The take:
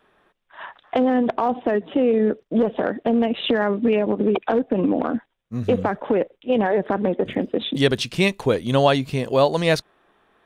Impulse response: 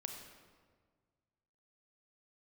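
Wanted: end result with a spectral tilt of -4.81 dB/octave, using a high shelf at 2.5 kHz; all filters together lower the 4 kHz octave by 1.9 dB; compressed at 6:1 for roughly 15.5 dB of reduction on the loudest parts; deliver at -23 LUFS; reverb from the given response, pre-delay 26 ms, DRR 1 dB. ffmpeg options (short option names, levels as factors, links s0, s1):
-filter_complex "[0:a]highshelf=f=2500:g=3,equalizer=f=4000:t=o:g=-5,acompressor=threshold=0.0316:ratio=6,asplit=2[s0][s1];[1:a]atrim=start_sample=2205,adelay=26[s2];[s1][s2]afir=irnorm=-1:irlink=0,volume=1.12[s3];[s0][s3]amix=inputs=2:normalize=0,volume=2.66"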